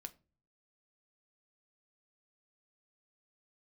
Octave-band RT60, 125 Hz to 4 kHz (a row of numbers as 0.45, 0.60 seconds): 0.75, 0.60, 0.40, 0.30, 0.25, 0.20 seconds